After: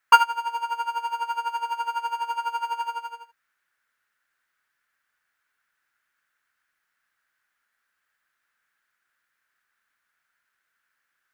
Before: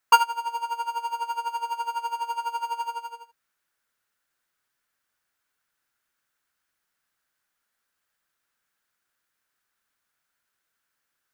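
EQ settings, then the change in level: bell 1700 Hz +11.5 dB 1.4 oct; -3.5 dB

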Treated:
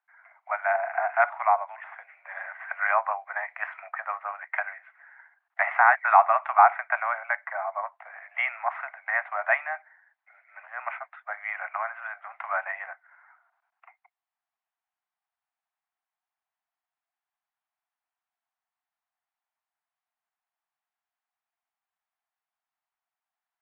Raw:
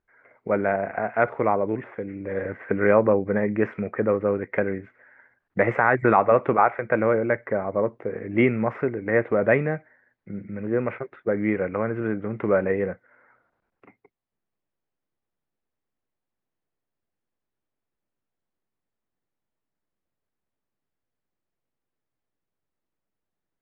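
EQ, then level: steep high-pass 680 Hz 96 dB/oct; air absorption 310 m; +4.5 dB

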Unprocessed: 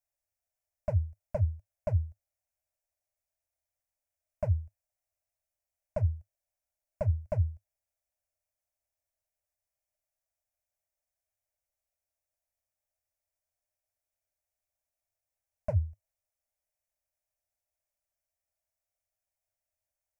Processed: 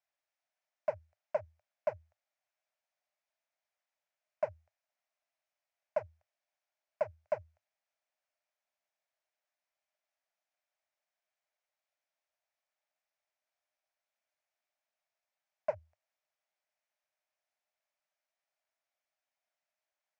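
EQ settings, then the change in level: HPF 770 Hz 12 dB/oct; air absorption 170 m; +7.5 dB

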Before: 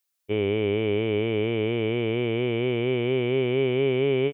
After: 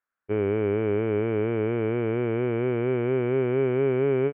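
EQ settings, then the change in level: synth low-pass 1500 Hz, resonance Q 3.9; air absorption 310 m; 0.0 dB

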